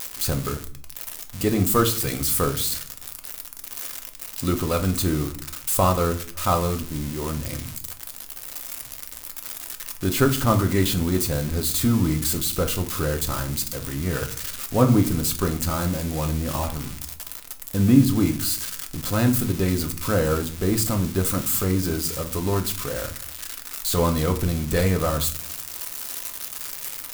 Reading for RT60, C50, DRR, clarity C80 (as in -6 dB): 0.45 s, 14.0 dB, 5.0 dB, 18.0 dB